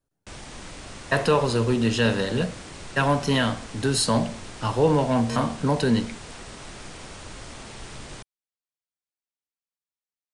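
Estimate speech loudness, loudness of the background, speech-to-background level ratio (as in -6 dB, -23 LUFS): -23.5 LUFS, -40.0 LUFS, 16.5 dB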